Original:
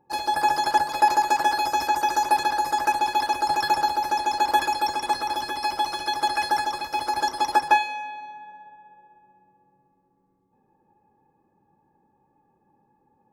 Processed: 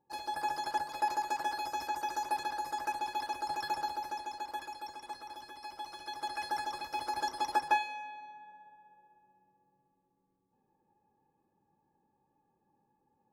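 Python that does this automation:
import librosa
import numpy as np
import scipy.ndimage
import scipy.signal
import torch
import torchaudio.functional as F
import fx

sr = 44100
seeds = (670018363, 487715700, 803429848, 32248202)

y = fx.gain(x, sr, db=fx.line((3.97, -13.0), (4.51, -19.5), (5.66, -19.5), (6.78, -10.0)))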